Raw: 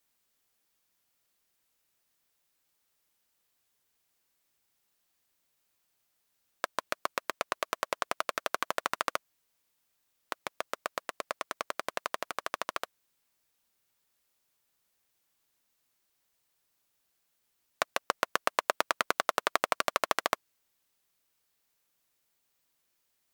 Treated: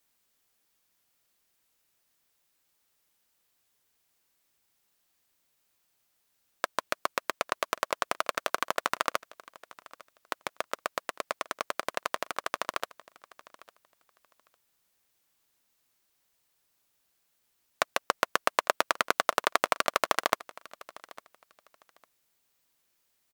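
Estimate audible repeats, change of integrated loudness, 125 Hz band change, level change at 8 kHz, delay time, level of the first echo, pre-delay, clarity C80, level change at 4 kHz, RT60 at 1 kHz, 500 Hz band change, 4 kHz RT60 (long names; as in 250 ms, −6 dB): 1, +2.5 dB, +2.5 dB, +2.5 dB, 853 ms, −21.0 dB, no reverb audible, no reverb audible, +2.5 dB, no reverb audible, +2.5 dB, no reverb audible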